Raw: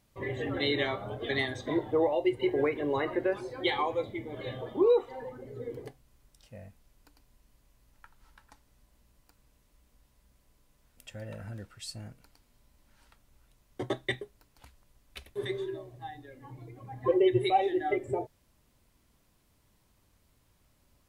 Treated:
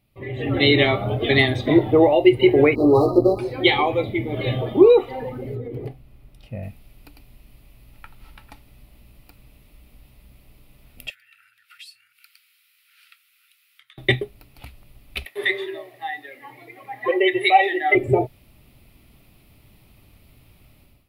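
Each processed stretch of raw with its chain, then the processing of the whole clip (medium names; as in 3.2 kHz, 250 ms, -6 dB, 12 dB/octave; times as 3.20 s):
2.75–3.39 s: doubling 17 ms -3 dB + hysteresis with a dead band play -35 dBFS + brick-wall FIR band-stop 1.3–3.9 kHz
5.55–6.63 s: treble shelf 2.2 kHz -9.5 dB + compression, threshold -41 dBFS
11.10–13.98 s: compression 5:1, threshold -52 dBFS + elliptic high-pass 1.4 kHz, stop band 50 dB
15.25–17.95 s: high-pass 650 Hz + peaking EQ 1.9 kHz +13 dB 0.24 oct
whole clip: graphic EQ with 31 bands 125 Hz +4 dB, 500 Hz -5 dB, 1 kHz -9 dB, 1.6 kHz -10 dB, 2.5 kHz +6 dB, 8 kHz -8 dB; level rider gain up to 14.5 dB; peaking EQ 6.3 kHz -13 dB 0.59 oct; trim +1 dB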